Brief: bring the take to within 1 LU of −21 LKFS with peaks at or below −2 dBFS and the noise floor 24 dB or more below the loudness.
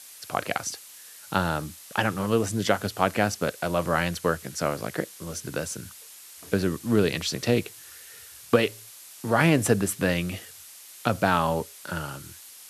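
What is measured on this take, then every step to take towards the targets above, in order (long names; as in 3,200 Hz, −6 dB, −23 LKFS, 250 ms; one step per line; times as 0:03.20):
background noise floor −47 dBFS; target noise floor −51 dBFS; integrated loudness −26.5 LKFS; sample peak −5.5 dBFS; target loudness −21.0 LKFS
→ noise reduction from a noise print 6 dB
level +5.5 dB
brickwall limiter −2 dBFS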